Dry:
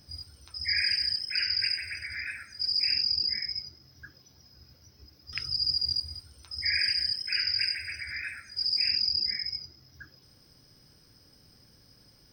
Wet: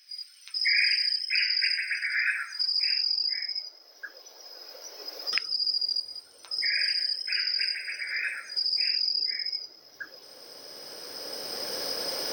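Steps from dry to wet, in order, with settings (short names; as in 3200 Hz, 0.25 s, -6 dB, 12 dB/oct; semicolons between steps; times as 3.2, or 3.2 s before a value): recorder AGC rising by 11 dB/s; 3.42–5.32 Chebyshev high-pass 470 Hz, order 2; high-pass sweep 2200 Hz -> 520 Hz, 1.4–3.92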